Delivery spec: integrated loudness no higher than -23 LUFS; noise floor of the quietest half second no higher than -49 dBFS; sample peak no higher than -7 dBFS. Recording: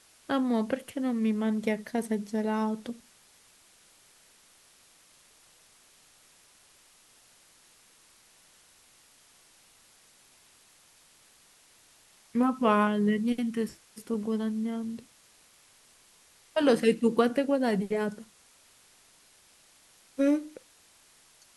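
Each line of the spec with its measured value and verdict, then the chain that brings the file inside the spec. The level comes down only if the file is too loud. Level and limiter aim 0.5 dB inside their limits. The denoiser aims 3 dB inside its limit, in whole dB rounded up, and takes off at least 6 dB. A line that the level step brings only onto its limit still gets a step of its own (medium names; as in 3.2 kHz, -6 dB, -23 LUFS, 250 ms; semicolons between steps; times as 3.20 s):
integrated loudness -28.5 LUFS: pass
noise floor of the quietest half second -60 dBFS: pass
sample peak -11.0 dBFS: pass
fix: none needed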